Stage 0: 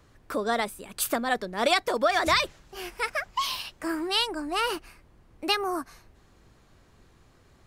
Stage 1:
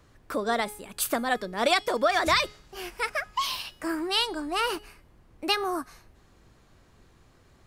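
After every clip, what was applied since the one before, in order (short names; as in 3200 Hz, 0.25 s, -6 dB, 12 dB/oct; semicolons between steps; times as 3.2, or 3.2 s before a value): de-hum 418.9 Hz, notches 39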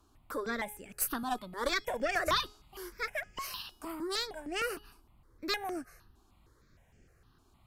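bell 12000 Hz +6 dB 0.24 oct; tube stage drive 13 dB, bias 0.75; step phaser 6.5 Hz 530–3900 Hz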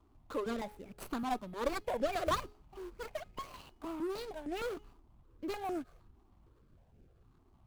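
median filter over 25 samples; gain +1 dB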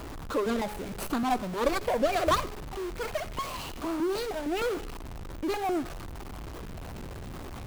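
zero-crossing step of -41 dBFS; reverb RT60 0.30 s, pre-delay 63 ms, DRR 20 dB; gain +6.5 dB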